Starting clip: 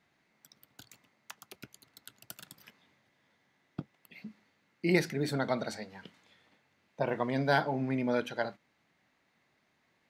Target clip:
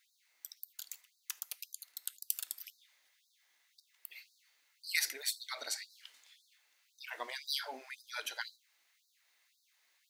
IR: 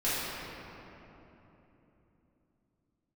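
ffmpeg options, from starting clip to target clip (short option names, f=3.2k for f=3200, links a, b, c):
-filter_complex "[0:a]aderivative,asplit=2[a][b];[1:a]atrim=start_sample=2205,afade=t=out:st=0.14:d=0.01,atrim=end_sample=6615[c];[b][c]afir=irnorm=-1:irlink=0,volume=-22.5dB[d];[a][d]amix=inputs=2:normalize=0,afftfilt=real='re*gte(b*sr/1024,230*pow(3800/230,0.5+0.5*sin(2*PI*1.9*pts/sr)))':imag='im*gte(b*sr/1024,230*pow(3800/230,0.5+0.5*sin(2*PI*1.9*pts/sr)))':win_size=1024:overlap=0.75,volume=9.5dB"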